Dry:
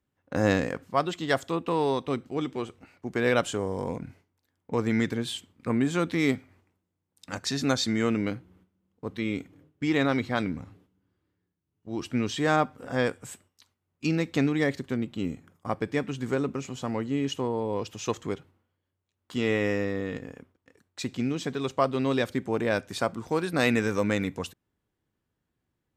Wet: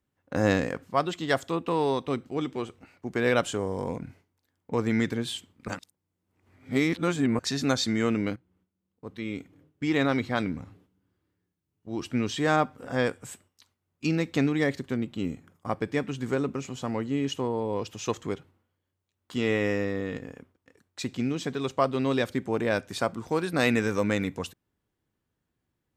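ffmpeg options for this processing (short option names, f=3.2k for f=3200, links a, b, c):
-filter_complex "[0:a]asplit=4[a][b][c][d];[a]atrim=end=5.682[e];[b]atrim=start=5.678:end=7.392,asetpts=PTS-STARTPTS,areverse[f];[c]atrim=start=7.388:end=8.36,asetpts=PTS-STARTPTS,afade=t=out:st=0.968:d=0.004:c=hsin:silence=0.149624[g];[d]atrim=start=8.36,asetpts=PTS-STARTPTS,afade=t=in:d=1.66:silence=0.149624[h];[e][f]acrossfade=d=0.004:c1=hsin:c2=hsin[i];[g][h]concat=n=2:v=0:a=1[j];[i][j]acrossfade=d=0.004:c1=hsin:c2=hsin"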